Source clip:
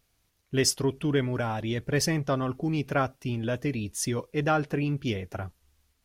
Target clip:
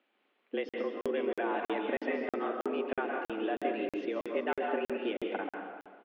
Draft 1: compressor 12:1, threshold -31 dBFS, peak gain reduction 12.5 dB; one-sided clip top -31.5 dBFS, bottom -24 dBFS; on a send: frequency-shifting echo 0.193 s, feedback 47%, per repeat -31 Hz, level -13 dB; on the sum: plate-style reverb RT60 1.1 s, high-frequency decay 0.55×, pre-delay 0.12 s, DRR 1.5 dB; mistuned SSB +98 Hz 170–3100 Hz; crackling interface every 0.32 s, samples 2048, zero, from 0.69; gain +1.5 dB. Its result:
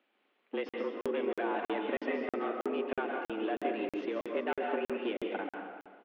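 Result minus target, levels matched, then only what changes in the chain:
one-sided clip: distortion +9 dB
change: one-sided clip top -20.5 dBFS, bottom -24 dBFS

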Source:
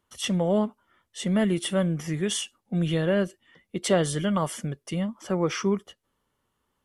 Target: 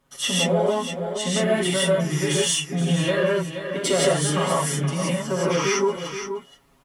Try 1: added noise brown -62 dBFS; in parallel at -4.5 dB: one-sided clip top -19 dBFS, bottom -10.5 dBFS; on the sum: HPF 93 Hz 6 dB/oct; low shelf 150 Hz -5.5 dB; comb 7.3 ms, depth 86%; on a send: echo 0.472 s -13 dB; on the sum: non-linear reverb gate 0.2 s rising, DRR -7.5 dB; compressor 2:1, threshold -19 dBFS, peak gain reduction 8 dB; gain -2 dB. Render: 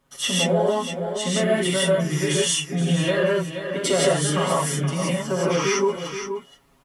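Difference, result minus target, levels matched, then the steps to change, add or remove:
one-sided clip: distortion -8 dB
change: one-sided clip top -26.5 dBFS, bottom -10.5 dBFS

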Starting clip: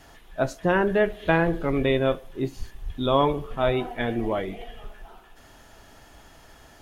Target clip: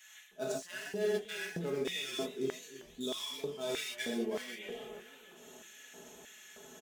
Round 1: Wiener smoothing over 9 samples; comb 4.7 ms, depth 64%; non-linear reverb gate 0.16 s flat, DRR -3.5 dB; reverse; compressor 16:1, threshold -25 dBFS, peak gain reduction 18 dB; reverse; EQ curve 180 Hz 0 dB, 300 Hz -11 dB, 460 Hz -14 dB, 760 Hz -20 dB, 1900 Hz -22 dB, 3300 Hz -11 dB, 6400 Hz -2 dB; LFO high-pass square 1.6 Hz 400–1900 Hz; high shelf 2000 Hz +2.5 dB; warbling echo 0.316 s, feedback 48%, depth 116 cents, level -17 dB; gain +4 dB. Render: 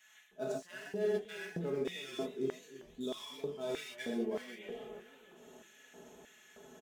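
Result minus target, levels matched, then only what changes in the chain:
4000 Hz band -5.5 dB
change: high shelf 2000 Hz +12.5 dB

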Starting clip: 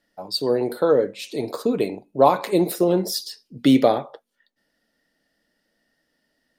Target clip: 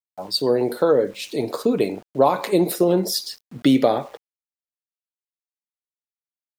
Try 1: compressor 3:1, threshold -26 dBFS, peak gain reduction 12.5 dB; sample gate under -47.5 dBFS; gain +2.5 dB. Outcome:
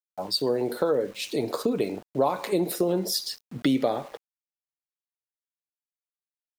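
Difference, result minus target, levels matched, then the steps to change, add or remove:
compressor: peak gain reduction +7.5 dB
change: compressor 3:1, threshold -15 dBFS, peak gain reduction 5 dB

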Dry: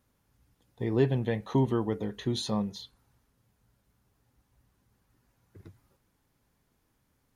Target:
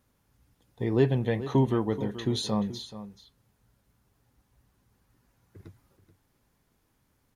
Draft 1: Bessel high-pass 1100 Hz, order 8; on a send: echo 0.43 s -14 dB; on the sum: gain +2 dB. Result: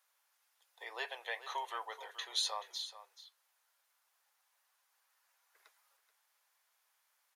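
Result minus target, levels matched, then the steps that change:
1000 Hz band +7.5 dB
remove: Bessel high-pass 1100 Hz, order 8

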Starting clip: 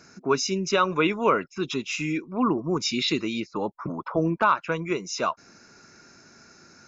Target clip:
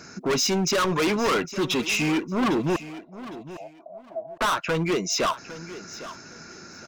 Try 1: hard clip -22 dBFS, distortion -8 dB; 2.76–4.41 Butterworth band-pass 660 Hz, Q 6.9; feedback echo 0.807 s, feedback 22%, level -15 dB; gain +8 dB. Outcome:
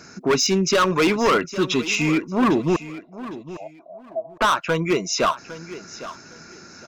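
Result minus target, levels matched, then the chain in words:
hard clip: distortion -4 dB
hard clip -28.5 dBFS, distortion -4 dB; 2.76–4.41 Butterworth band-pass 660 Hz, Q 6.9; feedback echo 0.807 s, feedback 22%, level -15 dB; gain +8 dB

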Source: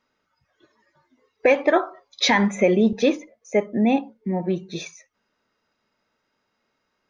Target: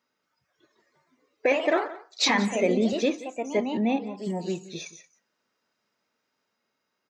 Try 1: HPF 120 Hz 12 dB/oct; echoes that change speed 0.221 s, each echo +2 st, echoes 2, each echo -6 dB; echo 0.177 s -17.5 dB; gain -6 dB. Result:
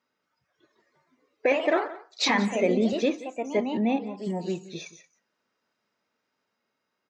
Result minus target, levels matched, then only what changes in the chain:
8000 Hz band -3.5 dB
add after HPF: high shelf 6400 Hz +8.5 dB

